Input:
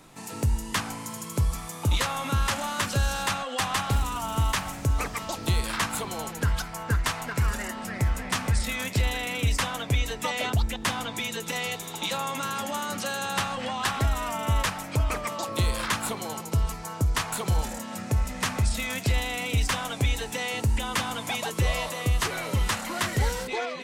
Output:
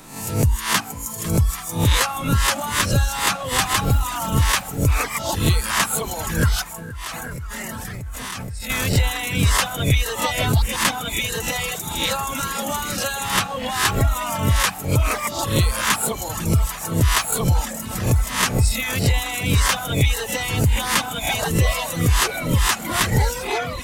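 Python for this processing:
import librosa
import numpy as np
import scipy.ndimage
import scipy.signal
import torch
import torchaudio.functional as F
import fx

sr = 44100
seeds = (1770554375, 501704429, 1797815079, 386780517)

p1 = fx.spec_swells(x, sr, rise_s=0.56)
p2 = fx.high_shelf(p1, sr, hz=11000.0, db=8.0)
p3 = p2 + fx.echo_swing(p2, sr, ms=834, ratio=1.5, feedback_pct=73, wet_db=-16.0, dry=0)
p4 = fx.level_steps(p3, sr, step_db=17, at=(6.63, 8.7))
p5 = fx.dereverb_blind(p4, sr, rt60_s=1.4)
y = F.gain(torch.from_numpy(p5), 6.0).numpy()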